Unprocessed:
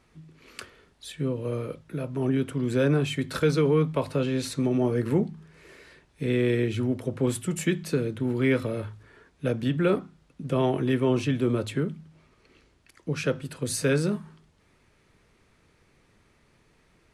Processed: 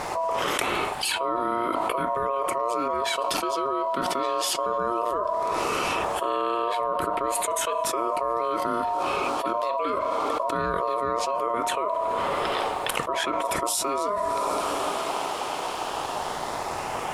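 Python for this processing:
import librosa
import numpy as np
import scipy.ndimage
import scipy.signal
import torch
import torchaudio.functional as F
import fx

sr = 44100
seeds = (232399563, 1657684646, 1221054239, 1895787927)

y = fx.filter_lfo_notch(x, sr, shape='sine', hz=0.18, low_hz=920.0, high_hz=5700.0, q=1.2)
y = y * np.sin(2.0 * np.pi * 820.0 * np.arange(len(y)) / sr)
y = fx.rev_double_slope(y, sr, seeds[0], early_s=0.2, late_s=4.6, knee_db=-21, drr_db=20.0)
y = fx.env_flatten(y, sr, amount_pct=100)
y = F.gain(torch.from_numpy(y), -4.5).numpy()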